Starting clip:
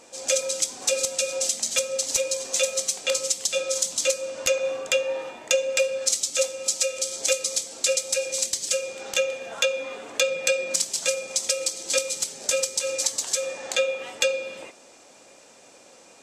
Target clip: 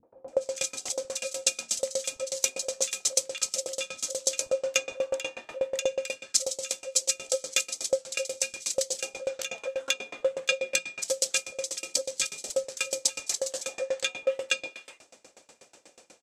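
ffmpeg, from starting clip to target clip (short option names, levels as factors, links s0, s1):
-filter_complex "[0:a]acrossover=split=220|1000[s0][s1][s2];[s1]adelay=30[s3];[s2]adelay=280[s4];[s0][s3][s4]amix=inputs=3:normalize=0,aeval=exprs='val(0)*pow(10,-27*if(lt(mod(8.2*n/s,1),2*abs(8.2)/1000),1-mod(8.2*n/s,1)/(2*abs(8.2)/1000),(mod(8.2*n/s,1)-2*abs(8.2)/1000)/(1-2*abs(8.2)/1000))/20)':c=same,volume=1.5"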